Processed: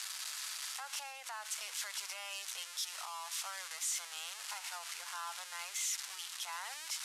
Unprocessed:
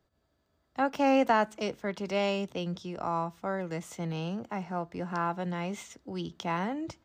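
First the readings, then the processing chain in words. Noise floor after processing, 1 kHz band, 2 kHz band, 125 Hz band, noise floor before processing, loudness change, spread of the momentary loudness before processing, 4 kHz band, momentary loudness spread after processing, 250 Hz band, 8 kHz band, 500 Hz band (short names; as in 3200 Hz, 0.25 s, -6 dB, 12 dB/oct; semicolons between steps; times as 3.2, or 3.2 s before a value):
-49 dBFS, -14.5 dB, -6.5 dB, under -40 dB, -75 dBFS, -8.0 dB, 12 LU, +3.0 dB, 6 LU, under -40 dB, +13.5 dB, -28.0 dB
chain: switching spikes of -20.5 dBFS; Bessel low-pass 8500 Hz, order 8; compressor, threshold -27 dBFS, peak gain reduction 7.5 dB; limiter -29 dBFS, peak gain reduction 9 dB; inverse Chebyshev high-pass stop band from 160 Hz, stop band 80 dB; gain -1.5 dB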